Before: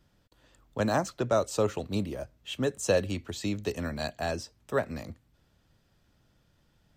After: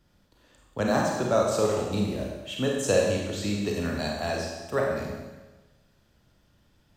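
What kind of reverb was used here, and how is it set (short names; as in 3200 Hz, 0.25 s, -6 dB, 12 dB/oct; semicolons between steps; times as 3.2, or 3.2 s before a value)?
Schroeder reverb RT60 1.2 s, combs from 31 ms, DRR -1.5 dB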